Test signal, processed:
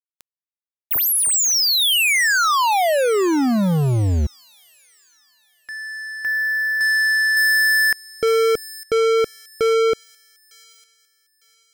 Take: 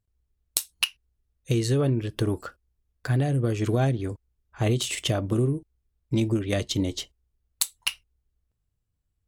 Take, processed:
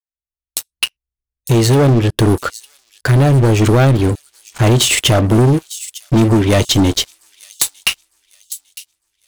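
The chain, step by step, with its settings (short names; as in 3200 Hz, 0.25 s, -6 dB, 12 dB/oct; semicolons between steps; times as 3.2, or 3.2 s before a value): opening faded in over 1.98 s; sample leveller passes 5; on a send: thin delay 0.904 s, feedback 33%, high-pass 5400 Hz, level -10 dB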